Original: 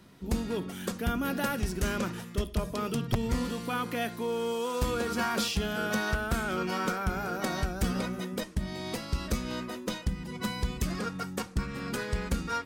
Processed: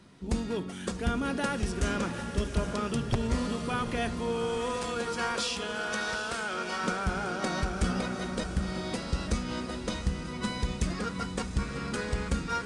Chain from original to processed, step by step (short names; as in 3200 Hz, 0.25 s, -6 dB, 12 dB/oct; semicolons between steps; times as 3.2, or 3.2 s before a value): 4.76–6.84 HPF 650 Hz 6 dB/oct; diffused feedback echo 0.754 s, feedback 46%, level -7.5 dB; AAC 96 kbps 22050 Hz